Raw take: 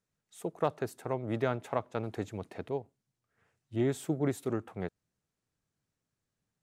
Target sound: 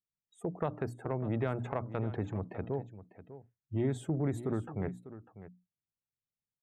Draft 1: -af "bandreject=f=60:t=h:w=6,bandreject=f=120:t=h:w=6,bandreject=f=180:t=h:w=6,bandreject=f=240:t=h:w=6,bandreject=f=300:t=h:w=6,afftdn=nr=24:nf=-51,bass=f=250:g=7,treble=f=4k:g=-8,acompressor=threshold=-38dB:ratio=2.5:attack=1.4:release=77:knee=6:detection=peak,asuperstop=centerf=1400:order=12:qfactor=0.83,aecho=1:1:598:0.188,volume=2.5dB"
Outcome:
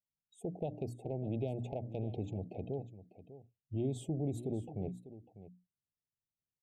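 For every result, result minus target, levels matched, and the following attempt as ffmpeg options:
1000 Hz band -5.0 dB; compressor: peak gain reduction +4 dB
-af "bandreject=f=60:t=h:w=6,bandreject=f=120:t=h:w=6,bandreject=f=180:t=h:w=6,bandreject=f=240:t=h:w=6,bandreject=f=300:t=h:w=6,afftdn=nr=24:nf=-51,bass=f=250:g=7,treble=f=4k:g=-8,acompressor=threshold=-38dB:ratio=2.5:attack=1.4:release=77:knee=6:detection=peak,aecho=1:1:598:0.188,volume=2.5dB"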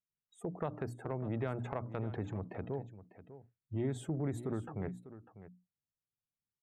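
compressor: peak gain reduction +4 dB
-af "bandreject=f=60:t=h:w=6,bandreject=f=120:t=h:w=6,bandreject=f=180:t=h:w=6,bandreject=f=240:t=h:w=6,bandreject=f=300:t=h:w=6,afftdn=nr=24:nf=-51,bass=f=250:g=7,treble=f=4k:g=-8,acompressor=threshold=-31.5dB:ratio=2.5:attack=1.4:release=77:knee=6:detection=peak,aecho=1:1:598:0.188,volume=2.5dB"

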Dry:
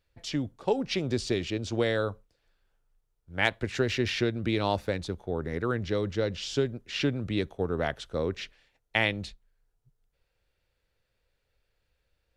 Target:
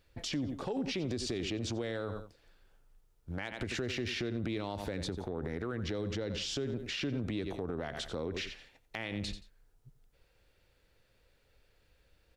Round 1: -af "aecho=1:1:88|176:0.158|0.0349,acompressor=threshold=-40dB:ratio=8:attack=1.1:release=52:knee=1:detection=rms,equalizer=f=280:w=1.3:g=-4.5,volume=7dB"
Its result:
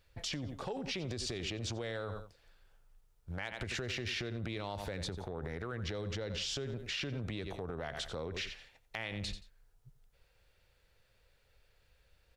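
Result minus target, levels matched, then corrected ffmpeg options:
250 Hz band -4.5 dB
-af "aecho=1:1:88|176:0.158|0.0349,acompressor=threshold=-40dB:ratio=8:attack=1.1:release=52:knee=1:detection=rms,equalizer=f=280:w=1.3:g=4,volume=7dB"

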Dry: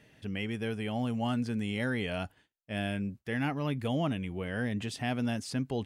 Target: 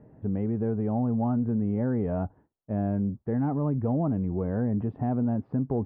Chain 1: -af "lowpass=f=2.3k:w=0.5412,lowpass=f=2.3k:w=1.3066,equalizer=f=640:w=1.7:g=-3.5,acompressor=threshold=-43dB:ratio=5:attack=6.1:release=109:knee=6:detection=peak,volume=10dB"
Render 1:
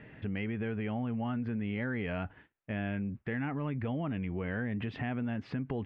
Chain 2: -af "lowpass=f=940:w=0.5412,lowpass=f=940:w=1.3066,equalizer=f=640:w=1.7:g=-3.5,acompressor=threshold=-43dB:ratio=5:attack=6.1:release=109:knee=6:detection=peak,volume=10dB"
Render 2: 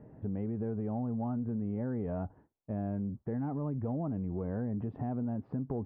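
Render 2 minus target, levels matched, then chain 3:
compressor: peak gain reduction +8.5 dB
-af "lowpass=f=940:w=0.5412,lowpass=f=940:w=1.3066,equalizer=f=640:w=1.7:g=-3.5,acompressor=threshold=-32.5dB:ratio=5:attack=6.1:release=109:knee=6:detection=peak,volume=10dB"

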